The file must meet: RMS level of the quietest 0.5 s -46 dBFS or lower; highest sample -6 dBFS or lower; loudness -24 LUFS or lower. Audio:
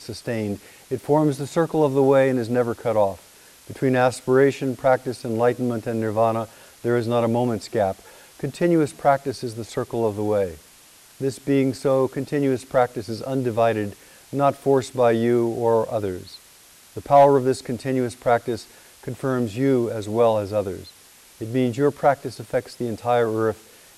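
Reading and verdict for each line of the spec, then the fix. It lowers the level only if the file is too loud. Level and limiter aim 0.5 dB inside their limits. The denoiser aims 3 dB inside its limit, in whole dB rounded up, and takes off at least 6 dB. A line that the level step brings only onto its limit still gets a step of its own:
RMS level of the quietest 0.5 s -50 dBFS: OK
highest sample -5.0 dBFS: fail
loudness -22.0 LUFS: fail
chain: gain -2.5 dB

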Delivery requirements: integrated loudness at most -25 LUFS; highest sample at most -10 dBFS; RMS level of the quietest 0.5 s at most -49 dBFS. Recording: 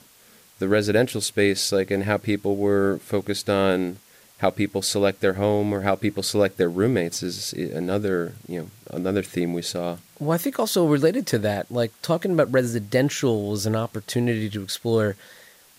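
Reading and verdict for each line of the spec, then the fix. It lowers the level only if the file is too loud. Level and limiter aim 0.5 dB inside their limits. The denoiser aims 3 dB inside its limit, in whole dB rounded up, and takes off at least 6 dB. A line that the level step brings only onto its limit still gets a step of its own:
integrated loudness -23.5 LUFS: fail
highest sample -6.5 dBFS: fail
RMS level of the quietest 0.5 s -53 dBFS: OK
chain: gain -2 dB; limiter -10.5 dBFS

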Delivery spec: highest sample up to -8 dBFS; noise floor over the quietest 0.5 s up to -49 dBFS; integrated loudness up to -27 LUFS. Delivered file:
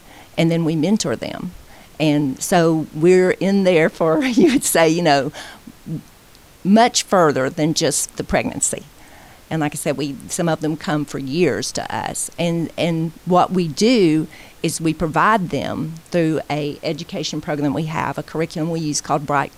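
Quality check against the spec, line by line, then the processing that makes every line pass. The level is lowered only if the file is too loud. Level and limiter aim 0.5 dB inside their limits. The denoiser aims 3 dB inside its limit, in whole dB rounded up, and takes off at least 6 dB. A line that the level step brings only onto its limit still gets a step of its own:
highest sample -4.0 dBFS: fail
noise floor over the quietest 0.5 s -46 dBFS: fail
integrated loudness -18.5 LUFS: fail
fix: gain -9 dB

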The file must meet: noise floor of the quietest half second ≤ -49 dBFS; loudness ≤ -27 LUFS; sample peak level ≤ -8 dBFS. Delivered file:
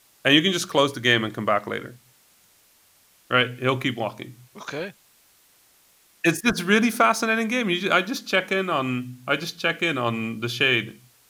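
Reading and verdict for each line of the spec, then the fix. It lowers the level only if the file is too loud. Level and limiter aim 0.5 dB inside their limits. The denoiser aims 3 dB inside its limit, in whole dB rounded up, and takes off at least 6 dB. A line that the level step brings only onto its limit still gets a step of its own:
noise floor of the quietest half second -59 dBFS: OK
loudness -22.5 LUFS: fail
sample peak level -4.5 dBFS: fail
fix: gain -5 dB

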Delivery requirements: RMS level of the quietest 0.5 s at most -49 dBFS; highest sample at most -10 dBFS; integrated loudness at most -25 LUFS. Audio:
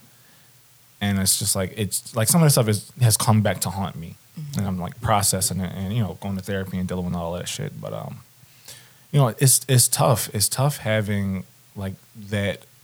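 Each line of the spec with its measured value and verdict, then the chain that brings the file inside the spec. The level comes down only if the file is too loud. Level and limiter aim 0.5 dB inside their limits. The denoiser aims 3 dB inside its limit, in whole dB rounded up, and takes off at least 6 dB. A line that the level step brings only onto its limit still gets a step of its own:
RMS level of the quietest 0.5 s -53 dBFS: OK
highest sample -5.0 dBFS: fail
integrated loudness -21.5 LUFS: fail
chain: gain -4 dB; limiter -10.5 dBFS

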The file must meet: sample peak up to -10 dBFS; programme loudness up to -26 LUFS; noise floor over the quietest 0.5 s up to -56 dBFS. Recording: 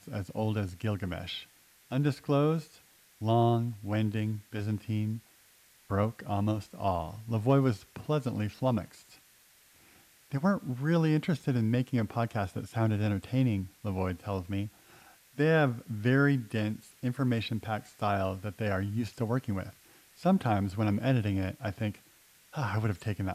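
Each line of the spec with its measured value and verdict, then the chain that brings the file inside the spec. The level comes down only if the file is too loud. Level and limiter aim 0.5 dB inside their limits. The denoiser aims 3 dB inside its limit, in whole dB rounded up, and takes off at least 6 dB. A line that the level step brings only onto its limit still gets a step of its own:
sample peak -13.5 dBFS: OK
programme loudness -31.0 LUFS: OK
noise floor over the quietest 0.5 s -62 dBFS: OK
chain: none

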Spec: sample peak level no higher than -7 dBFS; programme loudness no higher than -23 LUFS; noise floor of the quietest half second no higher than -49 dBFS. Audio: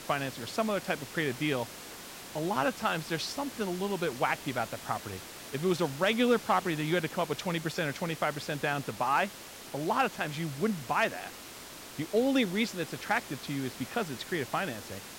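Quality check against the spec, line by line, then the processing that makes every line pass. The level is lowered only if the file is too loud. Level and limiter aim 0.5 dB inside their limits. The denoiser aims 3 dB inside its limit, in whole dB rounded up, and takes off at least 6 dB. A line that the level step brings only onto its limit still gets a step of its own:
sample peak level -14.5 dBFS: OK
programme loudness -31.5 LUFS: OK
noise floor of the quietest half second -46 dBFS: fail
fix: denoiser 6 dB, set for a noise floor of -46 dBFS

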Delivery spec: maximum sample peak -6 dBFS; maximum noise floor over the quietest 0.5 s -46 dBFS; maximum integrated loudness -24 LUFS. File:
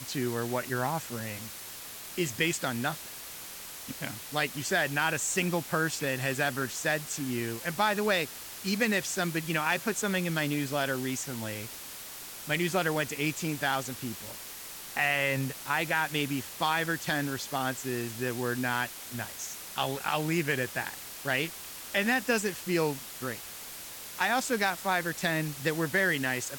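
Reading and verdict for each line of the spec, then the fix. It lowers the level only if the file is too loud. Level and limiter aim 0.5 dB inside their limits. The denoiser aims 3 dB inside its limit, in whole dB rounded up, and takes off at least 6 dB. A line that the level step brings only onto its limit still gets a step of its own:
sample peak -13.0 dBFS: OK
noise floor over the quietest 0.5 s -43 dBFS: fail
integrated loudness -30.5 LUFS: OK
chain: denoiser 6 dB, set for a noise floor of -43 dBFS

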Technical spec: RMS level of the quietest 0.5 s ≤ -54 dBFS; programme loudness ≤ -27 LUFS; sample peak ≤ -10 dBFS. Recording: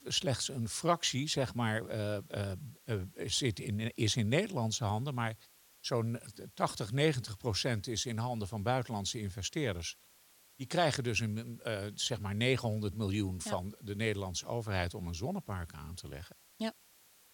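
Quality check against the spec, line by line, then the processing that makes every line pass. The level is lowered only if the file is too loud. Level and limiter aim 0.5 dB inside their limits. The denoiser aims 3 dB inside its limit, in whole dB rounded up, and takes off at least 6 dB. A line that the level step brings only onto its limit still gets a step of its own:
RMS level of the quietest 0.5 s -64 dBFS: OK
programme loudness -35.0 LUFS: OK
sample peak -14.0 dBFS: OK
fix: none

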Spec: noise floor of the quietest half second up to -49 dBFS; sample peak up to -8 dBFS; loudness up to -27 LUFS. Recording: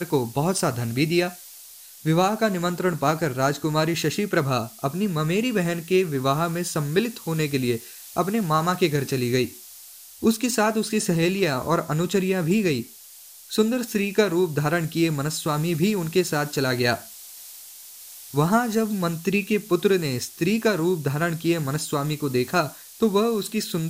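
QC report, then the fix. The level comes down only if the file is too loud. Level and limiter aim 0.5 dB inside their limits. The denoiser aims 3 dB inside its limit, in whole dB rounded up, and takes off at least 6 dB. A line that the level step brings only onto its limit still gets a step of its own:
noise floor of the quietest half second -46 dBFS: fail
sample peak -5.5 dBFS: fail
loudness -23.5 LUFS: fail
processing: gain -4 dB

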